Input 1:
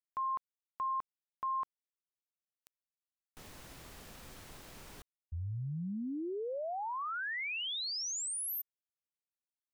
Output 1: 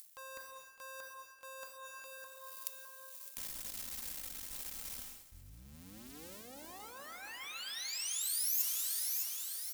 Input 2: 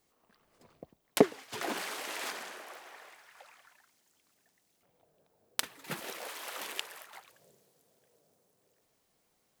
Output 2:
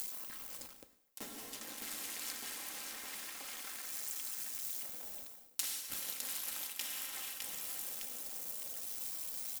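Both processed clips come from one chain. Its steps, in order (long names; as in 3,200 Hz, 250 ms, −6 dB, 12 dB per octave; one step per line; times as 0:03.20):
sub-harmonics by changed cycles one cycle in 2, muted
low-shelf EQ 250 Hz +5.5 dB
comb filter 3.8 ms, depth 49%
upward compression, threshold −41 dBFS
repeating echo 609 ms, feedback 39%, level −14 dB
dense smooth reverb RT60 4.2 s, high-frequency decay 0.75×, DRR 6.5 dB
reversed playback
downward compressor 6 to 1, threshold −49 dBFS
reversed playback
first-order pre-emphasis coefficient 0.9
level +15.5 dB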